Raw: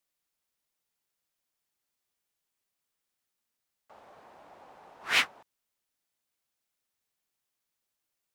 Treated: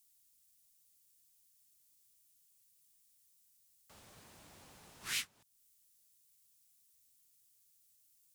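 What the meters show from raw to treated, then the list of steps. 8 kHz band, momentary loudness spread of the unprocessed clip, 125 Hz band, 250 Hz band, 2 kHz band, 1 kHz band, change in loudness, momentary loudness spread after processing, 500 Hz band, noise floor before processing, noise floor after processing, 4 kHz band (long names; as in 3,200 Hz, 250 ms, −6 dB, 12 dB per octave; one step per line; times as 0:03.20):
−1.0 dB, 14 LU, −1.0 dB, −9.0 dB, −14.5 dB, −17.5 dB, −16.0 dB, 22 LU, −15.0 dB, −85 dBFS, −71 dBFS, −10.0 dB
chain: drawn EQ curve 120 Hz 0 dB, 750 Hz −22 dB, 8,800 Hz +7 dB
downward compressor 2.5 to 1, threshold −51 dBFS, peak gain reduction 16.5 dB
level +8.5 dB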